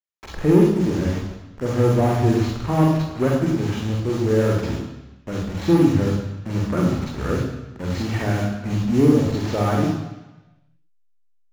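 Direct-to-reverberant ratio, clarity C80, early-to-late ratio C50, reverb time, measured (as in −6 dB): −2.0 dB, 5.5 dB, 2.5 dB, 1.1 s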